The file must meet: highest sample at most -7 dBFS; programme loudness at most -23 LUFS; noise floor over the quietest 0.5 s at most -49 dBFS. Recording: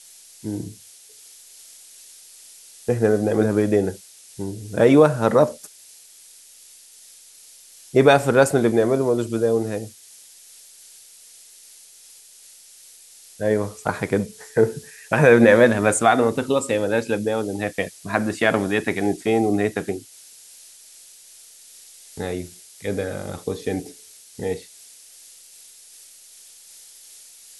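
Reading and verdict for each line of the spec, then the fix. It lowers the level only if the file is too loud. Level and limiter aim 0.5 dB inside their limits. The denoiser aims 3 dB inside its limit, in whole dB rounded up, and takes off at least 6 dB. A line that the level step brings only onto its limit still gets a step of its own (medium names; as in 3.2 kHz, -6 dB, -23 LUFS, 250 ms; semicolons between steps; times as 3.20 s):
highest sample -2.0 dBFS: fail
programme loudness -20.5 LUFS: fail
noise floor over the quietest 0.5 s -48 dBFS: fail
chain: trim -3 dB; peak limiter -7.5 dBFS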